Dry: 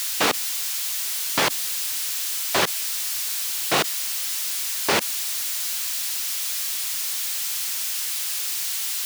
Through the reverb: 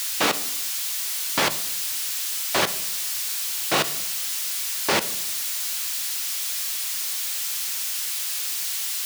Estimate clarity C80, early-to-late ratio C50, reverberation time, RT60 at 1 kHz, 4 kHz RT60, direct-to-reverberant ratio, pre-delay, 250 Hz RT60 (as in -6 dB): 19.5 dB, 16.0 dB, 0.80 s, 0.70 s, 0.55 s, 11.0 dB, 3 ms, 1.0 s